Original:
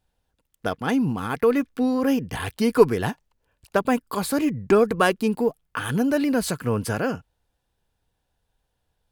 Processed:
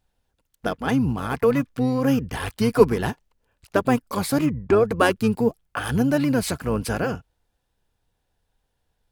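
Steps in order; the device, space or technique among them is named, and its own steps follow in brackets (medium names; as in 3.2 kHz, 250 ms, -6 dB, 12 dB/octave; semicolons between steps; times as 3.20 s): octave pedal (harmony voices -12 st -7 dB); 4.46–4.91 s: treble shelf 3.9 kHz -10 dB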